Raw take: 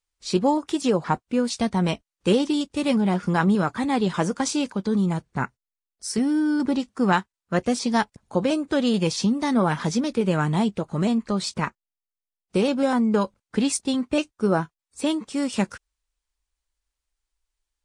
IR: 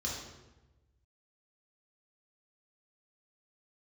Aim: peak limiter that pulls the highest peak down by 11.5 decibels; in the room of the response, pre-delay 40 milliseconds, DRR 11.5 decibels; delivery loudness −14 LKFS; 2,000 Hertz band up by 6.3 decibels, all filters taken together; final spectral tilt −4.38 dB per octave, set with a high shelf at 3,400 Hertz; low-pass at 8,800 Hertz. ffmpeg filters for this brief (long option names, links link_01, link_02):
-filter_complex "[0:a]lowpass=8800,equalizer=frequency=2000:width_type=o:gain=6.5,highshelf=frequency=3400:gain=7,alimiter=limit=-14dB:level=0:latency=1,asplit=2[link_01][link_02];[1:a]atrim=start_sample=2205,adelay=40[link_03];[link_02][link_03]afir=irnorm=-1:irlink=0,volume=-15dB[link_04];[link_01][link_04]amix=inputs=2:normalize=0,volume=10dB"